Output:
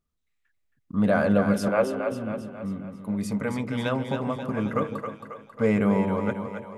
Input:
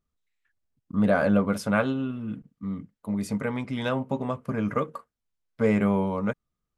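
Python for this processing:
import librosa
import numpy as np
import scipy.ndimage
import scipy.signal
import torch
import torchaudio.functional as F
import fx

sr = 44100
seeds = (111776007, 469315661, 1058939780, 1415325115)

y = fx.cabinet(x, sr, low_hz=330.0, low_slope=24, high_hz=2500.0, hz=(340.0, 540.0, 1600.0), db=(7, 6, -9), at=(1.68, 2.12))
y = fx.echo_split(y, sr, split_hz=450.0, low_ms=155, high_ms=271, feedback_pct=52, wet_db=-6.5)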